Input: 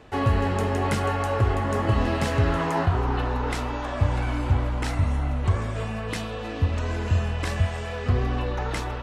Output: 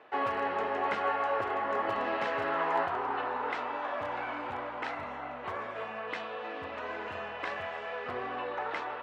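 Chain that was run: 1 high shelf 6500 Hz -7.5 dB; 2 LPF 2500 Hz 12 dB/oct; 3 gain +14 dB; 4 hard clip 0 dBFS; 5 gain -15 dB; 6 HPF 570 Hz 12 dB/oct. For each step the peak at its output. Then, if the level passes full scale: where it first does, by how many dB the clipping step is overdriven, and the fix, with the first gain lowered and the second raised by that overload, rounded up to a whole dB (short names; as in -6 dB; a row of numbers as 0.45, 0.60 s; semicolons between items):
-9.5, -9.5, +4.5, 0.0, -15.0, -17.0 dBFS; step 3, 4.5 dB; step 3 +9 dB, step 5 -10 dB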